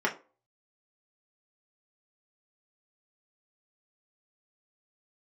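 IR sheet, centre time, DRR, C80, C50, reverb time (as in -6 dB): 14 ms, -2.5 dB, 20.0 dB, 14.0 dB, 0.35 s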